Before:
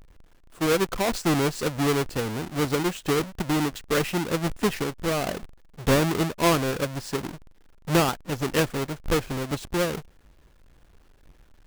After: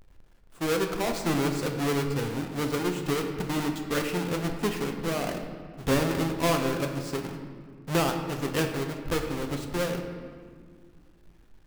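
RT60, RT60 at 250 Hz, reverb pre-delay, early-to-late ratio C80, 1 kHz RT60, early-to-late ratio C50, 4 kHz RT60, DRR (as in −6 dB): 1.9 s, 3.0 s, 8 ms, 7.5 dB, 1.8 s, 6.5 dB, 1.2 s, 3.5 dB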